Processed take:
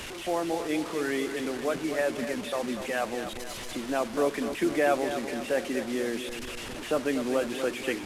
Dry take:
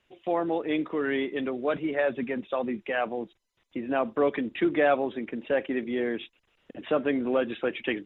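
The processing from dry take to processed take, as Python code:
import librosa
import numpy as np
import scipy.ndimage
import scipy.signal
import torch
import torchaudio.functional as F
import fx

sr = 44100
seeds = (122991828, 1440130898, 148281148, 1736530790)

p1 = fx.delta_mod(x, sr, bps=64000, step_db=-31.0)
p2 = p1 + fx.echo_feedback(p1, sr, ms=244, feedback_pct=52, wet_db=-9.5, dry=0)
y = F.gain(torch.from_numpy(p2), -2.0).numpy()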